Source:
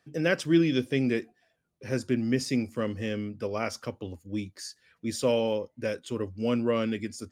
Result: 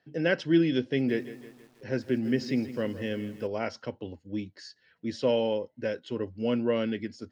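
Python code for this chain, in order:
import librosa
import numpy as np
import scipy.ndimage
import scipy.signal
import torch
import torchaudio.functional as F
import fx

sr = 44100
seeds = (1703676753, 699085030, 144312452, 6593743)

y = scipy.signal.sosfilt(scipy.signal.butter(4, 4900.0, 'lowpass', fs=sr, output='sos'), x)
y = fx.notch_comb(y, sr, f0_hz=1200.0)
y = fx.echo_crushed(y, sr, ms=162, feedback_pct=55, bits=8, wet_db=-14.0, at=(0.82, 3.47))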